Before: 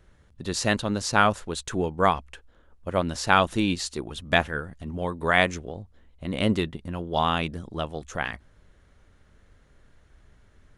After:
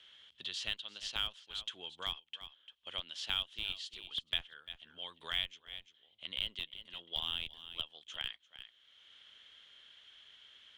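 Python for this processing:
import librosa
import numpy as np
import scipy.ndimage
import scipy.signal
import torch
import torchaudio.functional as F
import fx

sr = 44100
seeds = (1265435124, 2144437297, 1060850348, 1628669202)

p1 = fx.bandpass_q(x, sr, hz=3200.0, q=12.0)
p2 = fx.schmitt(p1, sr, flips_db=-34.0)
p3 = p1 + F.gain(torch.from_numpy(p2), -3.5).numpy()
p4 = p3 + 10.0 ** (-18.0 / 20.0) * np.pad(p3, (int(346 * sr / 1000.0), 0))[:len(p3)]
p5 = fx.band_squash(p4, sr, depth_pct=70)
y = F.gain(torch.from_numpy(p5), 3.5).numpy()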